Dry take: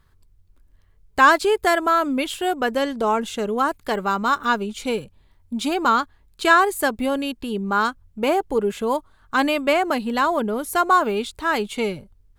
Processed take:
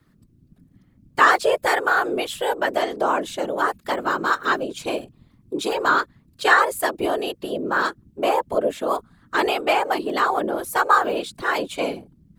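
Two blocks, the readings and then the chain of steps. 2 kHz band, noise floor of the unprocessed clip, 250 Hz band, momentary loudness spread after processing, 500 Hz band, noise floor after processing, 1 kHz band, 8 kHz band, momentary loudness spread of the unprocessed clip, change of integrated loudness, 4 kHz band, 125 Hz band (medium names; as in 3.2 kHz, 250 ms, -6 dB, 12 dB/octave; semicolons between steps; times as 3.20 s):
+1.0 dB, -57 dBFS, -5.0 dB, 11 LU, -0.5 dB, -59 dBFS, -0.5 dB, -1.0 dB, 11 LU, -0.5 dB, -0.5 dB, no reading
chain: frequency shift +120 Hz; whisper effect; trim -1 dB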